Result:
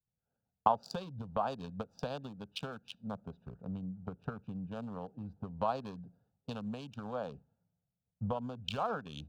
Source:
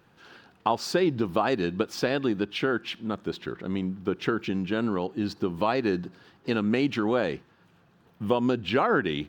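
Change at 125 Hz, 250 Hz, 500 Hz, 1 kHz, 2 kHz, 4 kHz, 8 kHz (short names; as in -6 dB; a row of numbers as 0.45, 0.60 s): -8.5 dB, -15.5 dB, -13.5 dB, -6.5 dB, -18.5 dB, -12.0 dB, n/a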